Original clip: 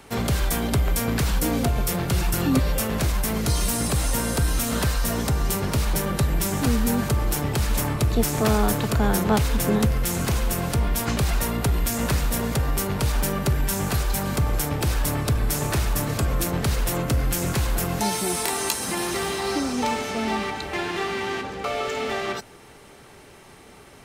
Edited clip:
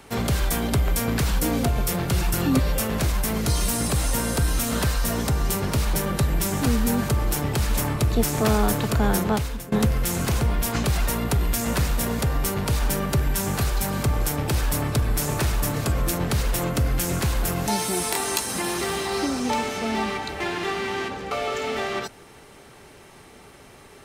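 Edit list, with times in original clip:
9.17–9.72 fade out, to -22 dB
10.41–10.74 cut

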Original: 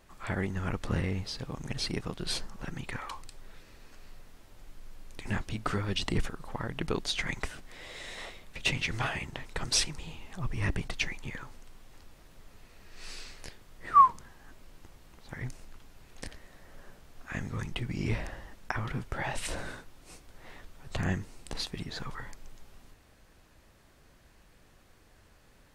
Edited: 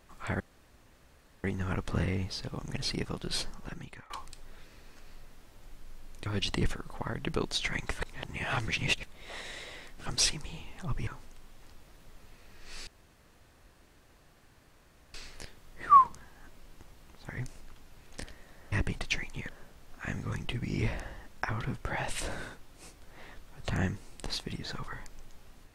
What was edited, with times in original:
0.4 insert room tone 1.04 s
2.5–3.06 fade out, to -21.5 dB
5.22–5.8 cut
7.53–9.6 reverse
10.61–11.38 move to 16.76
13.18 insert room tone 2.27 s

